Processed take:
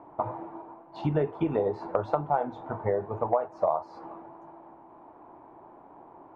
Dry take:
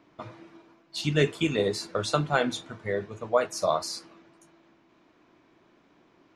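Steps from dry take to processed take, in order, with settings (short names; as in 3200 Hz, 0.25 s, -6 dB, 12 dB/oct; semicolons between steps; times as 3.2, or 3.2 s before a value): synth low-pass 860 Hz, resonance Q 5; bell 200 Hz -5 dB 0.92 oct; compressor 6:1, threshold -31 dBFS, peak gain reduction 18 dB; gain +7.5 dB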